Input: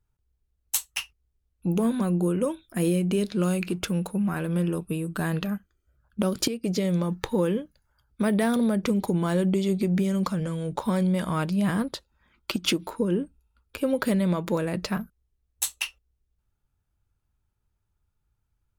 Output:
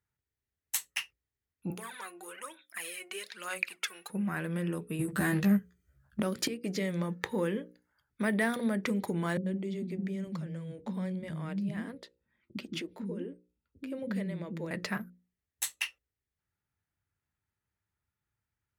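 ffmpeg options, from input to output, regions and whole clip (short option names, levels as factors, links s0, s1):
-filter_complex "[0:a]asettb=1/sr,asplit=3[s0][s1][s2];[s0]atrim=end=1.704[s3];[s1]atrim=start=1.7:end=4.1,asetpts=PTS-STARTPTS,afade=t=in:d=0.004:c=qsin,afade=t=out:st=2.396:d=0.004:c=qsin,highpass=1100,aphaser=in_gain=1:out_gain=1:delay=2.8:decay=0.64:speed=1.1:type=sinusoidal[s4];[s2]atrim=start=4.096[s5];[s3][s4]acrossfade=d=0.004:c1=hsin:c2=qsin[s6];[s6][s5]acrossfade=d=0.004:c1=qsin:c2=hsin,asettb=1/sr,asplit=3[s7][s8][s9];[s7]atrim=end=4.994[s10];[s8]atrim=start=4.99:end=6.2,asetpts=PTS-STARTPTS,afade=t=in:d=0.004:c=qsin,afade=t=out:st=1.206:d=0.004:c=qsin,bass=f=250:g=12,treble=f=4000:g=7,aeval=exprs='clip(val(0),-1,0.106)':c=same,asplit=2[s11][s12];[s12]adelay=15,volume=0.75[s13];[s11][s13]amix=inputs=2:normalize=0,atrim=end_sample=53361[s14];[s9]atrim=start=6.196[s15];[s10][s14]acrossfade=d=0.004:c1=hsin:c2=qsin[s16];[s16][s15]acrossfade=d=0.004:c1=qsin:c2=hsin,asettb=1/sr,asplit=3[s17][s18][s19];[s17]atrim=end=9.374[s20];[s18]atrim=start=9.37:end=14.71,asetpts=PTS-STARTPTS,afade=t=in:d=0.004:c=qsin,afade=t=out:st=5.336:d=0.004:c=qsin,lowpass=f=2000:p=1,equalizer=f=1200:w=0.65:g=-12,acrossover=split=290[s21][s22];[s22]adelay=90[s23];[s21][s23]amix=inputs=2:normalize=0,atrim=end_sample=235494[s24];[s19]atrim=start=14.706[s25];[s20][s24]acrossfade=d=0.004:c1=hsin:c2=qsin[s26];[s26][s25]acrossfade=d=0.004:c1=qsin:c2=hsin,highpass=100,equalizer=f=1900:t=o:w=0.55:g=11,bandreject=f=60:t=h:w=6,bandreject=f=120:t=h:w=6,bandreject=f=180:t=h:w=6,bandreject=f=240:t=h:w=6,bandreject=f=300:t=h:w=6,bandreject=f=360:t=h:w=6,bandreject=f=420:t=h:w=6,bandreject=f=480:t=h:w=6,bandreject=f=540:t=h:w=6,volume=0.473"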